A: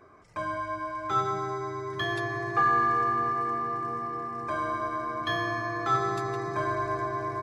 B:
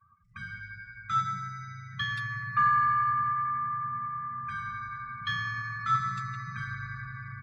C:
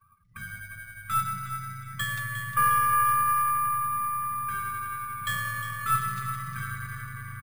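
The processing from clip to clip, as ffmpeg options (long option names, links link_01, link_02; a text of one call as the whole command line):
ffmpeg -i in.wav -af "afftfilt=real='re*(1-between(b*sr/4096,230,1100))':imag='im*(1-between(b*sr/4096,230,1100))':win_size=4096:overlap=0.75,afftdn=noise_reduction=26:noise_floor=-50,adynamicequalizer=threshold=0.00562:dfrequency=3600:dqfactor=0.7:tfrequency=3600:tqfactor=0.7:attack=5:release=100:ratio=0.375:range=2.5:mode=cutabove:tftype=highshelf" out.wav
ffmpeg -i in.wav -af "aeval=exprs='if(lt(val(0),0),0.708*val(0),val(0))':channel_layout=same,aecho=1:1:356|712|1068|1424:0.282|0.107|0.0407|0.0155,acrusher=samples=4:mix=1:aa=0.000001,volume=2.5dB" out.wav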